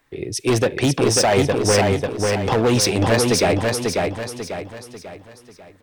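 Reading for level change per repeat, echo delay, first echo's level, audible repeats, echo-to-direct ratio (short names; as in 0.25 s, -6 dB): -7.5 dB, 0.543 s, -3.0 dB, 5, -2.0 dB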